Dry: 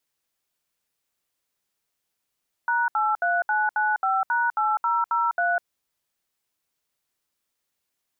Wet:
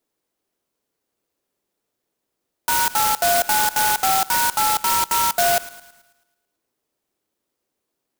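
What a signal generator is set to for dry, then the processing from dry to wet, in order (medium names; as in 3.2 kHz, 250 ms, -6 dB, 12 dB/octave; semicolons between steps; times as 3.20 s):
DTMF "#83995#8003", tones 201 ms, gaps 69 ms, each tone -22.5 dBFS
peaking EQ 370 Hz +13.5 dB 2.1 oct; feedback echo behind a high-pass 109 ms, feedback 50%, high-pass 1.5 kHz, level -13.5 dB; sampling jitter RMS 0.12 ms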